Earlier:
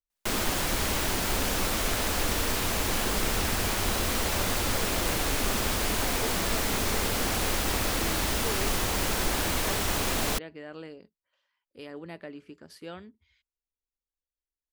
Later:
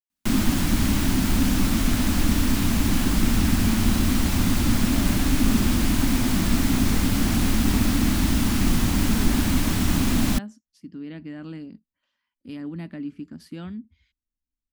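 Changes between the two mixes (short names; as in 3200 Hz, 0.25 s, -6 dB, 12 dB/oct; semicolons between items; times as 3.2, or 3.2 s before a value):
speech: entry +0.70 s; master: add resonant low shelf 340 Hz +9.5 dB, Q 3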